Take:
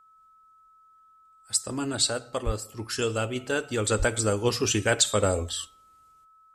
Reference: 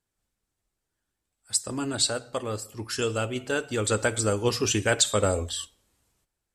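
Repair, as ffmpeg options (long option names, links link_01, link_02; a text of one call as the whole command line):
ffmpeg -i in.wav -filter_complex "[0:a]bandreject=frequency=1300:width=30,asplit=3[link_01][link_02][link_03];[link_01]afade=type=out:start_time=2.45:duration=0.02[link_04];[link_02]highpass=frequency=140:width=0.5412,highpass=frequency=140:width=1.3066,afade=type=in:start_time=2.45:duration=0.02,afade=type=out:start_time=2.57:duration=0.02[link_05];[link_03]afade=type=in:start_time=2.57:duration=0.02[link_06];[link_04][link_05][link_06]amix=inputs=3:normalize=0,asplit=3[link_07][link_08][link_09];[link_07]afade=type=out:start_time=3.98:duration=0.02[link_10];[link_08]highpass=frequency=140:width=0.5412,highpass=frequency=140:width=1.3066,afade=type=in:start_time=3.98:duration=0.02,afade=type=out:start_time=4.1:duration=0.02[link_11];[link_09]afade=type=in:start_time=4.1:duration=0.02[link_12];[link_10][link_11][link_12]amix=inputs=3:normalize=0" out.wav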